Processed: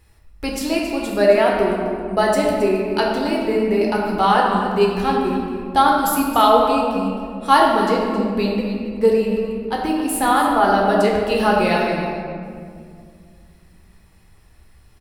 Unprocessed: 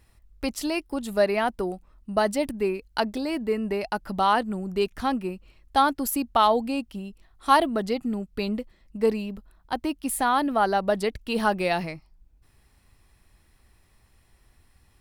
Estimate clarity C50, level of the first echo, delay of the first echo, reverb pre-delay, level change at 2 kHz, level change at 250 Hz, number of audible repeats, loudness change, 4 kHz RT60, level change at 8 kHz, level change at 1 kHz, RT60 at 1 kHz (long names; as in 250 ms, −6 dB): 0.5 dB, −12.0 dB, 270 ms, 10 ms, +7.5 dB, +8.0 dB, 1, +7.5 dB, 1.2 s, +5.5 dB, +7.5 dB, 2.0 s